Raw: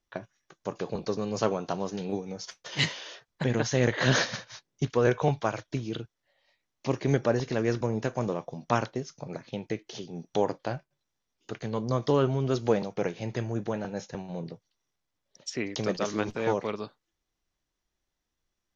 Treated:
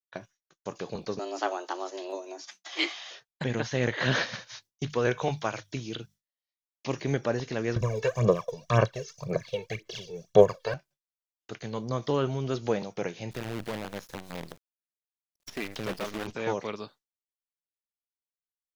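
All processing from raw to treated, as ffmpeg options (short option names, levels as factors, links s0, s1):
-filter_complex "[0:a]asettb=1/sr,asplit=3[s0][s1][s2];[s0]atrim=end=1.194[s3];[s1]atrim=start=1.19:end=3.11,asetpts=PTS-STARTPTS,afade=t=in:d=0.004:c=qsin,afade=t=out:st=1.916:d=0.004:c=qsin,afreqshift=180,equalizer=f=480:t=o:w=0.26:g=-6[s4];[s2]atrim=start=3.106[s5];[s3][s4]acrossfade=d=0.004:c1=hsin:c2=qsin[s6];[s6][s5]acrossfade=d=0.004:c1=qsin:c2=hsin,asettb=1/sr,asplit=3[s7][s8][s9];[s7]atrim=end=4.494[s10];[s8]atrim=start=4.49:end=7.02,asetpts=PTS-STARTPTS,afade=t=in:d=0.004:c=qsin,afade=t=out:st=2.526:d=0.004:c=qsin,highshelf=f=3500:g=7.5,bandreject=f=50:t=h:w=6,bandreject=f=100:t=h:w=6,bandreject=f=150:t=h:w=6,bandreject=f=200:t=h:w=6[s11];[s9]atrim=start=7.016[s12];[s10][s11]acrossfade=d=0.004:c1=hsin:c2=qsin[s13];[s13][s12]acrossfade=d=0.004:c1=qsin:c2=hsin,asettb=1/sr,asplit=3[s14][s15][s16];[s14]atrim=end=7.764[s17];[s15]atrim=start=7.76:end=10.74,asetpts=PTS-STARTPTS,afade=t=in:d=0.004:c=qsin,afade=t=out:st=2.976:d=0.004:c=qsin,aecho=1:1:1.8:0.8,atrim=end_sample=131418,aphaser=in_gain=1:out_gain=1:delay=2.3:decay=0.73:speed=1.9:type=sinusoidal[s18];[s16]atrim=start=10.736[s19];[s17][s18]acrossfade=d=0.004:c1=hsin:c2=qsin[s20];[s20][s19]acrossfade=d=0.004:c1=qsin:c2=hsin,asettb=1/sr,asplit=3[s21][s22][s23];[s21]atrim=end=13.314[s24];[s22]atrim=start=13.31:end=16.27,asetpts=PTS-STARTPTS,afade=t=in:d=0.004:c=qsin,afade=t=out:st=2.956:d=0.004:c=qsin,bandreject=f=58.68:t=h:w=4,bandreject=f=117.36:t=h:w=4,asoftclip=type=hard:threshold=0.0531,acrusher=bits=6:dc=4:mix=0:aa=0.000001[s25];[s23]atrim=start=16.266[s26];[s24][s25]acrossfade=d=0.004:c1=hsin:c2=qsin[s27];[s27][s26]acrossfade=d=0.004:c1=qsin:c2=hsin,agate=range=0.0224:threshold=0.00501:ratio=3:detection=peak,acrossover=split=3500[s28][s29];[s29]acompressor=threshold=0.002:ratio=4:attack=1:release=60[s30];[s28][s30]amix=inputs=2:normalize=0,highshelf=f=2900:g=11.5,volume=0.668"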